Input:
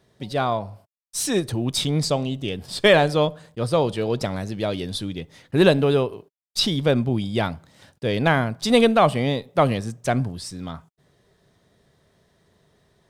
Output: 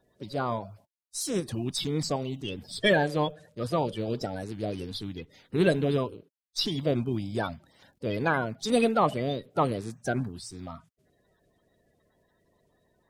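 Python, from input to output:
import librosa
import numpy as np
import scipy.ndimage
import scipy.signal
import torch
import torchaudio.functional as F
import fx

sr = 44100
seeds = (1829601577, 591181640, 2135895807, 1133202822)

y = fx.spec_quant(x, sr, step_db=30)
y = y * librosa.db_to_amplitude(-6.5)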